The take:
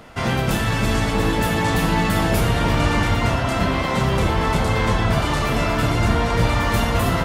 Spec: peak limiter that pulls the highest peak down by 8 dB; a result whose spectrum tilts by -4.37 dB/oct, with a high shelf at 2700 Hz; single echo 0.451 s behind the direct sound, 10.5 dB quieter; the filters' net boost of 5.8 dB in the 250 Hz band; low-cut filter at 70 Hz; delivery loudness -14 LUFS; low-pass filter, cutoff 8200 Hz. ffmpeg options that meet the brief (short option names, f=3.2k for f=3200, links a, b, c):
-af "highpass=70,lowpass=8.2k,equalizer=f=250:t=o:g=7.5,highshelf=f=2.7k:g=8,alimiter=limit=-12.5dB:level=0:latency=1,aecho=1:1:451:0.299,volume=7dB"